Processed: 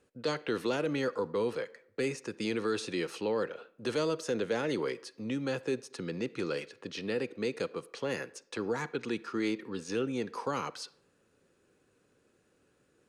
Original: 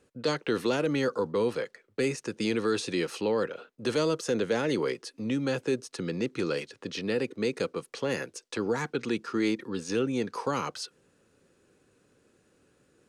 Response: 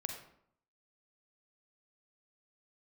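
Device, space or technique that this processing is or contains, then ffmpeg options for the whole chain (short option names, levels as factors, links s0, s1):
filtered reverb send: -filter_complex "[0:a]asplit=2[s0][s1];[s1]highpass=290,lowpass=4500[s2];[1:a]atrim=start_sample=2205[s3];[s2][s3]afir=irnorm=-1:irlink=0,volume=0.251[s4];[s0][s4]amix=inputs=2:normalize=0,volume=0.562"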